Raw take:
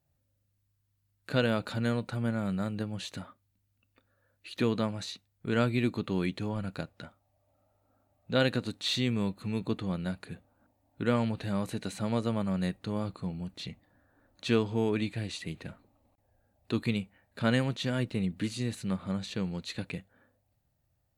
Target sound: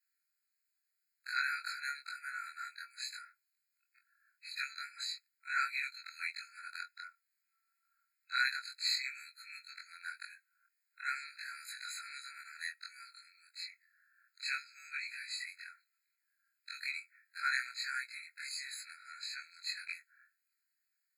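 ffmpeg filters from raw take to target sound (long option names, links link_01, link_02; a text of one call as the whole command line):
ffmpeg -i in.wav -af "afftfilt=real='re':imag='-im':win_size=2048:overlap=0.75,afftfilt=real='re*eq(mod(floor(b*sr/1024/1300),2),1)':imag='im*eq(mod(floor(b*sr/1024/1300),2),1)':win_size=1024:overlap=0.75,volume=7dB" out.wav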